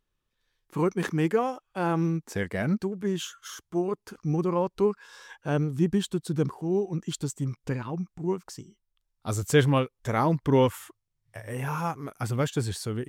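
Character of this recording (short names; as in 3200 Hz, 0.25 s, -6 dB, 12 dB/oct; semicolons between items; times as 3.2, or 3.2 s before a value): noise floor -80 dBFS; spectral tilt -6.5 dB/oct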